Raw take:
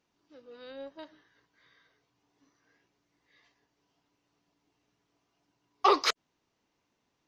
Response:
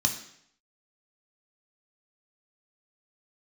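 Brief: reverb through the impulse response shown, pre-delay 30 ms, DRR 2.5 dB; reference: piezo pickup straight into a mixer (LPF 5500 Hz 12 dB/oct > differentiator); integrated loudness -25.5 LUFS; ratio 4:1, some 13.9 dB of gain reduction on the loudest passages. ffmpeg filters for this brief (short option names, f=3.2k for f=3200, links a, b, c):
-filter_complex "[0:a]acompressor=threshold=-35dB:ratio=4,asplit=2[a][b];[1:a]atrim=start_sample=2205,adelay=30[c];[b][c]afir=irnorm=-1:irlink=0,volume=-10dB[d];[a][d]amix=inputs=2:normalize=0,lowpass=5.5k,aderivative,volume=24dB"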